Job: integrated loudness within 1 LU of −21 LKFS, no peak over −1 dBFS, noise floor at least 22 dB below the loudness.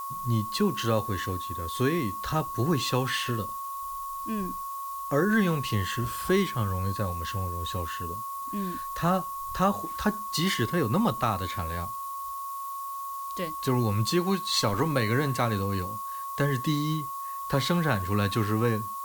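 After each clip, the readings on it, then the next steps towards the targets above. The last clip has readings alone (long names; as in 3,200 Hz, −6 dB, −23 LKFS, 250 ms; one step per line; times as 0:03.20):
interfering tone 1,100 Hz; level of the tone −33 dBFS; background noise floor −36 dBFS; target noise floor −51 dBFS; integrated loudness −28.5 LKFS; sample peak −11.0 dBFS; target loudness −21.0 LKFS
→ notch filter 1,100 Hz, Q 30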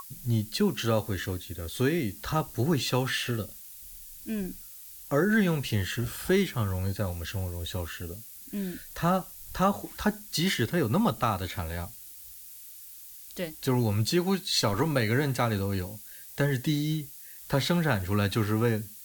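interfering tone none found; background noise floor −46 dBFS; target noise floor −51 dBFS
→ broadband denoise 6 dB, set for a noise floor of −46 dBFS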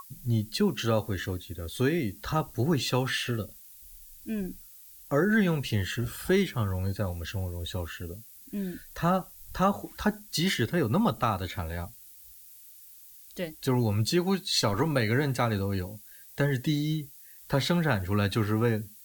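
background noise floor −51 dBFS; integrated loudness −29.0 LKFS; sample peak −12.0 dBFS; target loudness −21.0 LKFS
→ level +8 dB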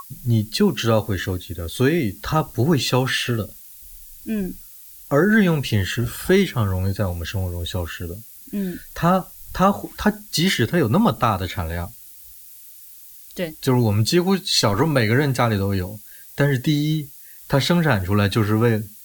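integrated loudness −21.0 LKFS; sample peak −4.0 dBFS; background noise floor −43 dBFS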